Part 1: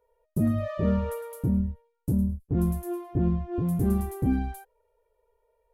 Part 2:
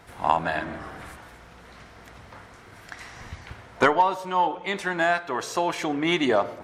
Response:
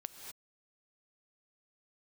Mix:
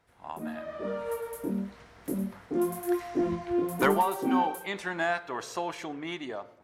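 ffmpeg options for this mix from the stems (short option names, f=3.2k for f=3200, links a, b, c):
-filter_complex "[0:a]highpass=f=280:w=0.5412,highpass=f=280:w=1.3066,flanger=delay=18.5:depth=7.7:speed=0.98,volume=-6dB[a];[1:a]volume=-19dB[b];[a][b]amix=inputs=2:normalize=0,dynaudnorm=f=250:g=9:m=13dB"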